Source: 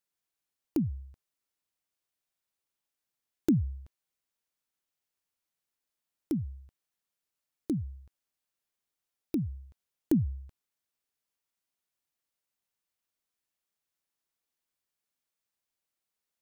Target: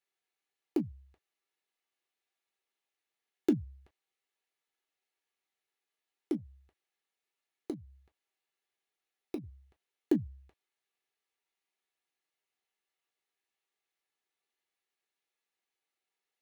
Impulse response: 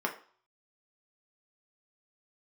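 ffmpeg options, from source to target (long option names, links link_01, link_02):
-filter_complex "[0:a]asettb=1/sr,asplit=3[link_01][link_02][link_03];[link_01]atrim=end=6.364[link_04];[link_02]atrim=start=6.36:end=9.44,asetpts=PTS-STARTPTS,afade=type=in:duration=0.004:curve=qsin,afade=type=out:start_time=3.076:duration=0.004:curve=qsin,acompressor=threshold=-34dB:ratio=6[link_05];[link_03]atrim=start=9.436[link_06];[link_04][link_05]acrossfade=duration=0.004:curve1=hsin:curve2=qsin[link_07];[link_07][link_06]acrossfade=duration=0.004:curve1=qsin:curve2=hsin[link_08];[1:a]atrim=start_sample=2205,atrim=end_sample=3528,asetrate=83790,aresample=44100[link_09];[link_08][link_09]afir=irnorm=-1:irlink=0"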